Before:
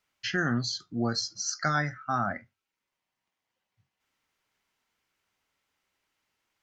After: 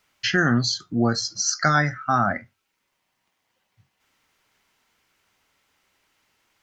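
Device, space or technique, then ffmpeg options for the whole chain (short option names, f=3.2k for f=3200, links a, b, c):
parallel compression: -filter_complex "[0:a]asplit=2[a][b];[b]acompressor=threshold=-40dB:ratio=6,volume=-4dB[c];[a][c]amix=inputs=2:normalize=0,asettb=1/sr,asplit=3[d][e][f];[d]atrim=end=0.744[g];[e]atrim=start=0.74:end=1.25,asetpts=PTS-STARTPTS,afade=t=in:d=0.004:c=qsin,afade=t=out:st=0.506:d=0.004:c=qsin,equalizer=f=4.6k:w=1.8:g=-6[h];[f]atrim=start=1.246[i];[g][h]acrossfade=d=0.004:c1=hsin:c2=qsin[j];[j][i]acrossfade=d=0.004:c1=qsin:c2=hsin,volume=7dB"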